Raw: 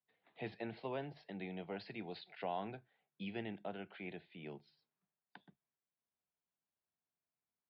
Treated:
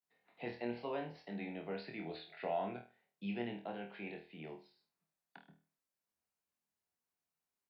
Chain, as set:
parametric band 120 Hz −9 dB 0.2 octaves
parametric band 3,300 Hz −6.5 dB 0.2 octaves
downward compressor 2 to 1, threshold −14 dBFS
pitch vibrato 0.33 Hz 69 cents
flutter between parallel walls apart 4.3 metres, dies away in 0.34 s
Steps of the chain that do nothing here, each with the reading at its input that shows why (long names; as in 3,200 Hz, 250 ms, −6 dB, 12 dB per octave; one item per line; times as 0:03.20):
downward compressor, threshold −14 dBFS: peak of its input −28.0 dBFS